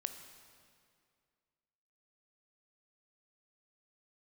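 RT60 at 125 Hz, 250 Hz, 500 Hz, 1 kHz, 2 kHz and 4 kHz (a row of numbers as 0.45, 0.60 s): 2.3, 2.3, 2.3, 2.2, 2.0, 1.8 s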